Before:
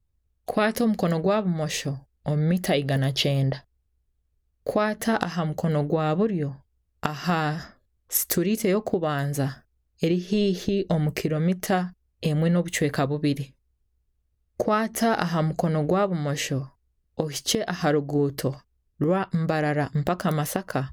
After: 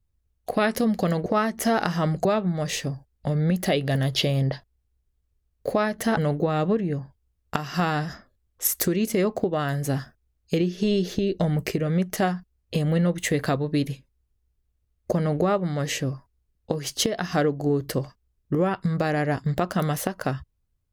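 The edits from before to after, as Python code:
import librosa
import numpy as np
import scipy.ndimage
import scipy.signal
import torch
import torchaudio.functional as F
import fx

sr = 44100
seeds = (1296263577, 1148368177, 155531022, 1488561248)

y = fx.edit(x, sr, fx.cut(start_s=5.18, length_s=0.49),
    fx.move(start_s=14.62, length_s=0.99, to_s=1.26), tone=tone)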